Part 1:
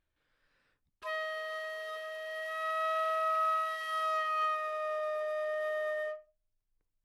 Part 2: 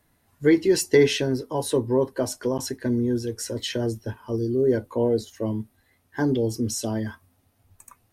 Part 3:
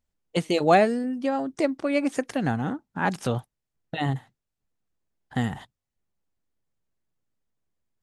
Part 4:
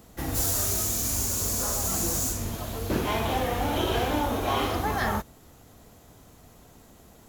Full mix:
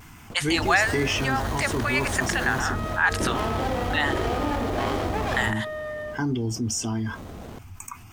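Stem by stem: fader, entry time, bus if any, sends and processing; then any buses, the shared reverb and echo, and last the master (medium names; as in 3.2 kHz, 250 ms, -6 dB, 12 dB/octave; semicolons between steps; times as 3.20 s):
-14.0 dB, 0.00 s, no send, none
-7.5 dB, 0.00 s, muted 2.75–5.47 s, no send, peaking EQ 1.9 kHz +7.5 dB; static phaser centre 2.7 kHz, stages 8
+1.5 dB, 0.00 s, no send, high-pass 950 Hz 24 dB/octave; peaking EQ 1.7 kHz +7.5 dB 0.31 oct
-7.0 dB, 0.30 s, no send, peaking EQ 12 kHz -13.5 dB 0.42 oct; sliding maximum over 17 samples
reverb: none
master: vibrato 0.61 Hz 22 cents; level flattener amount 50%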